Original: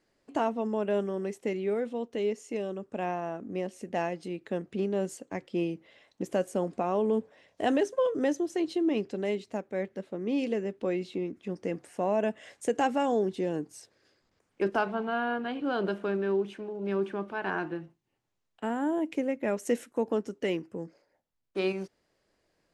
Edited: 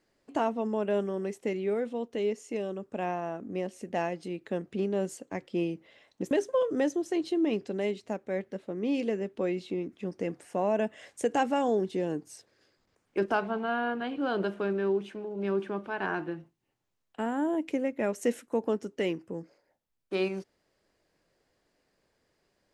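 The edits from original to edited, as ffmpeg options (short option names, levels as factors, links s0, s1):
-filter_complex "[0:a]asplit=2[s0][s1];[s0]atrim=end=6.312[s2];[s1]atrim=start=7.748[s3];[s2][s3]acrossfade=d=0.004:c1=hsin:c2=hsin"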